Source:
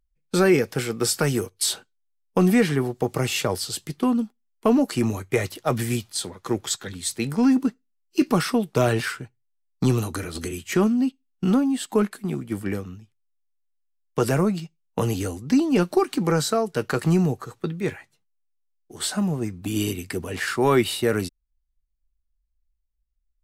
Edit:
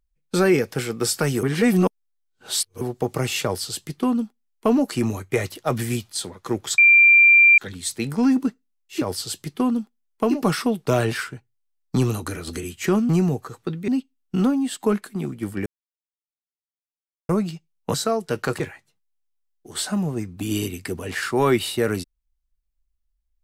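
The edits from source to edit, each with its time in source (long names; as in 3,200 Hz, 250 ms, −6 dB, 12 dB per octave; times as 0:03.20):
0:01.43–0:02.81: reverse
0:03.44–0:04.76: duplicate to 0:08.21, crossfade 0.24 s
0:06.78: insert tone 2,370 Hz −9 dBFS 0.80 s
0:12.75–0:14.38: silence
0:15.03–0:16.40: remove
0:17.06–0:17.85: move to 0:10.97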